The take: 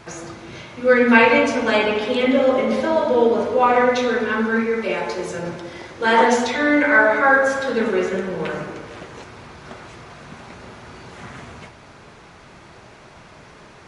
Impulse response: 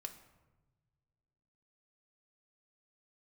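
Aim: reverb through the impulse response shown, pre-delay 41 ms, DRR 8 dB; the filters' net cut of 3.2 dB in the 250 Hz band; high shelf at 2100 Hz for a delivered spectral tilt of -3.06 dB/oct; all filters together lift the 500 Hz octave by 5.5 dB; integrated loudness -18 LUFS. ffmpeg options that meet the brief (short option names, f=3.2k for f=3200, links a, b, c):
-filter_complex "[0:a]equalizer=f=250:t=o:g=-5.5,equalizer=f=500:t=o:g=7.5,highshelf=f=2.1k:g=-6,asplit=2[a][b];[1:a]atrim=start_sample=2205,adelay=41[c];[b][c]afir=irnorm=-1:irlink=0,volume=-4.5dB[d];[a][d]amix=inputs=2:normalize=0,volume=-3.5dB"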